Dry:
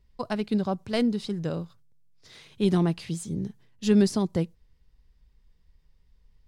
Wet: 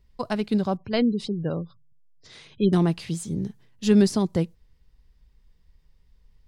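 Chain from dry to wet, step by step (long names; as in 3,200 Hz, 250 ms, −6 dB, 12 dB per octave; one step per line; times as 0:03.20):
0:00.77–0:02.73: gate on every frequency bin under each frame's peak −30 dB strong
level +2.5 dB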